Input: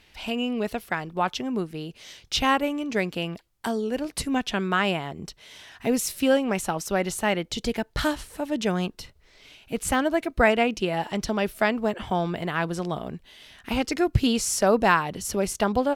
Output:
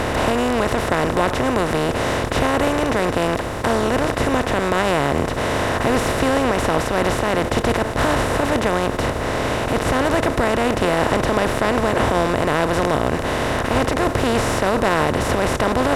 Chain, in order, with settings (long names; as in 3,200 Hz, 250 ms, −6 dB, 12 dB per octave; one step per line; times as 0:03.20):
compressor on every frequency bin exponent 0.2
high-shelf EQ 2,300 Hz −8 dB
brickwall limiter −4 dBFS, peak gain reduction 6.5 dB
level −2.5 dB